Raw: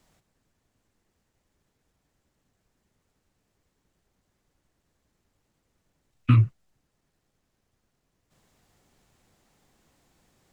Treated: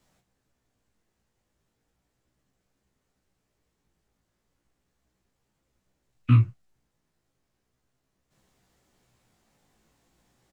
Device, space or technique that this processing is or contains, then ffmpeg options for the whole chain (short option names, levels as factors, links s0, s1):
double-tracked vocal: -filter_complex "[0:a]asplit=2[s0][s1];[s1]adelay=32,volume=0.335[s2];[s0][s2]amix=inputs=2:normalize=0,flanger=delay=15:depth=3:speed=0.36"